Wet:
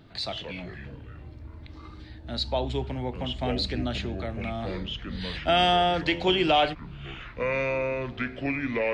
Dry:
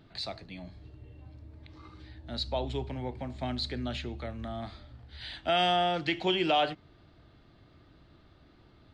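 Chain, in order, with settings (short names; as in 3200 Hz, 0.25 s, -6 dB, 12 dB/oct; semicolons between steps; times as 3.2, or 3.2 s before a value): echoes that change speed 86 ms, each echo -5 st, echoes 3, each echo -6 dB; gain +4.5 dB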